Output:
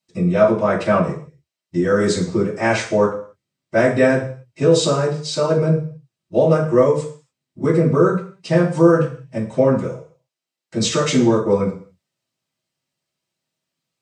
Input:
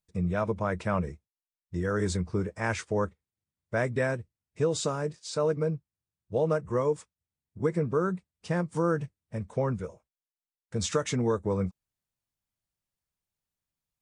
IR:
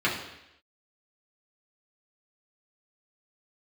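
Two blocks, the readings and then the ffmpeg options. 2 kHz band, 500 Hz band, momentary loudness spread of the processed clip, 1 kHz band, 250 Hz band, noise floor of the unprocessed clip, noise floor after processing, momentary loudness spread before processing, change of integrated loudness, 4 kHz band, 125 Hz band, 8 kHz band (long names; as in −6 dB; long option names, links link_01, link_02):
+11.0 dB, +13.0 dB, 11 LU, +11.0 dB, +13.5 dB, below −85 dBFS, −84 dBFS, 8 LU, +12.5 dB, +13.5 dB, +10.0 dB, +10.0 dB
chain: -filter_complex "[1:a]atrim=start_sample=2205,asetrate=79380,aresample=44100[link_01];[0:a][link_01]afir=irnorm=-1:irlink=0,volume=4.5dB"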